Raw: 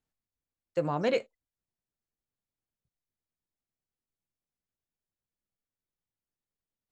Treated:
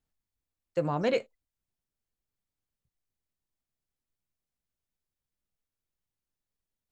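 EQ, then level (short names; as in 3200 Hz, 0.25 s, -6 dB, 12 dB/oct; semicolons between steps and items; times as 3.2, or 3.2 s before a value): low shelf 80 Hz +9 dB; 0.0 dB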